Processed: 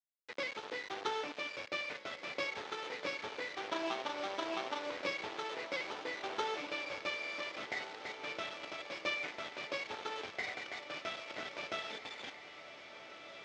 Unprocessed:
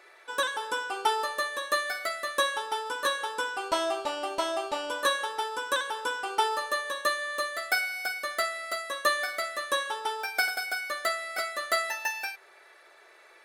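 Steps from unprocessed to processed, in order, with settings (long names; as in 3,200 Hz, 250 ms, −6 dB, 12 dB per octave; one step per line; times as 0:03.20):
running median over 41 samples
parametric band 670 Hz −13 dB 2.8 octaves
formants moved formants +5 semitones
bit reduction 8 bits
band-pass filter 340–6,000 Hz
high-frequency loss of the air 160 metres
feedback delay with all-pass diffusion 1,752 ms, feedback 57%, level −10 dB
level +9 dB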